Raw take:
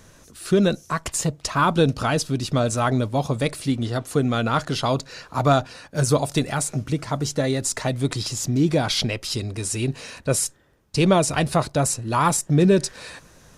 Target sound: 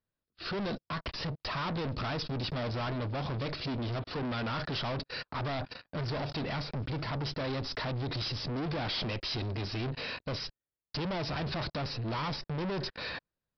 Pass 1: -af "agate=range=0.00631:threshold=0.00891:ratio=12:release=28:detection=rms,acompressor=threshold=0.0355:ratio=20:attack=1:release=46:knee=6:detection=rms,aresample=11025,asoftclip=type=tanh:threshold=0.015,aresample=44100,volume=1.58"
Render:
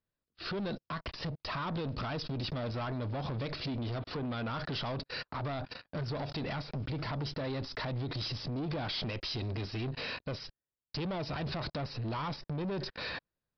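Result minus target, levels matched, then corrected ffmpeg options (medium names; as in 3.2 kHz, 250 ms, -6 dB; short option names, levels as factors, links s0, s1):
compression: peak gain reduction +11 dB
-af "agate=range=0.00631:threshold=0.00891:ratio=12:release=28:detection=rms,acompressor=threshold=0.133:ratio=20:attack=1:release=46:knee=6:detection=rms,aresample=11025,asoftclip=type=tanh:threshold=0.015,aresample=44100,volume=1.58"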